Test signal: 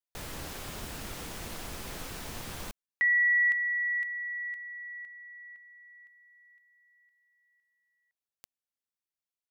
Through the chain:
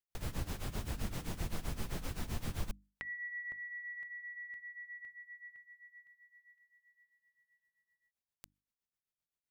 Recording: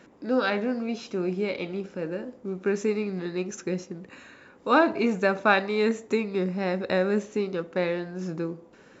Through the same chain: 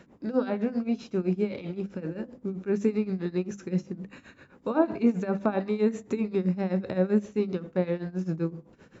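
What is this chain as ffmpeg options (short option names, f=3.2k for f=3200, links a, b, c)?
-filter_complex "[0:a]bass=f=250:g=10,treble=f=4k:g=-1,tremolo=f=7.7:d=0.87,acrossover=split=1000[a][b];[b]acompressor=threshold=-46dB:ratio=12:attack=6.8:release=37:detection=peak[c];[a][c]amix=inputs=2:normalize=0,bandreject=f=50:t=h:w=6,bandreject=f=100:t=h:w=6,bandreject=f=150:t=h:w=6,bandreject=f=200:t=h:w=6,bandreject=f=250:t=h:w=6,bandreject=f=300:t=h:w=6"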